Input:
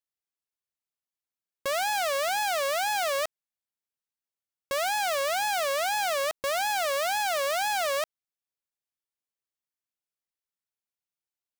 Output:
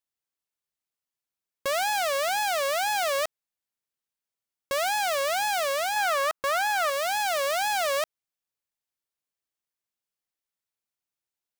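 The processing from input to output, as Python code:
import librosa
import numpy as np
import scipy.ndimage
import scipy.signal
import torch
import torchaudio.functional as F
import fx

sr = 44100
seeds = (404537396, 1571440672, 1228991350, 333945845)

y = fx.peak_eq(x, sr, hz=1300.0, db=9.0, octaves=0.98, at=(5.96, 6.9))
y = fx.rider(y, sr, range_db=10, speed_s=0.5)
y = y * librosa.db_to_amplitude(1.0)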